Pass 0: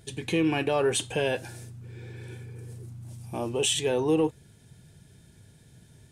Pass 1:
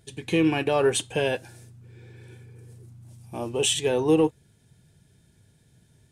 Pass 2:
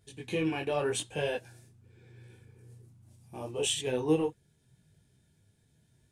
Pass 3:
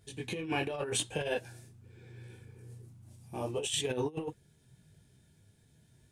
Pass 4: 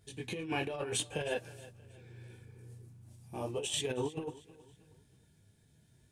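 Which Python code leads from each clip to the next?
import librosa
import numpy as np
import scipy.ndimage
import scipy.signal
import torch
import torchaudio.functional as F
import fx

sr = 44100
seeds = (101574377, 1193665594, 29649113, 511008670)

y1 = fx.upward_expand(x, sr, threshold_db=-40.0, expansion=1.5)
y1 = F.gain(torch.from_numpy(y1), 4.5).numpy()
y2 = fx.detune_double(y1, sr, cents=28)
y2 = F.gain(torch.from_numpy(y2), -4.0).numpy()
y3 = fx.over_compress(y2, sr, threshold_db=-33.0, ratio=-0.5)
y4 = fx.echo_feedback(y3, sr, ms=317, feedback_pct=36, wet_db=-19)
y4 = F.gain(torch.from_numpy(y4), -2.0).numpy()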